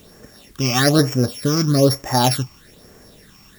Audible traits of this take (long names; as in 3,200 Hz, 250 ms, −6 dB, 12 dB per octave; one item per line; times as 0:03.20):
a buzz of ramps at a fixed pitch in blocks of 8 samples
phaser sweep stages 8, 1.1 Hz, lowest notch 500–3,900 Hz
a quantiser's noise floor 10 bits, dither triangular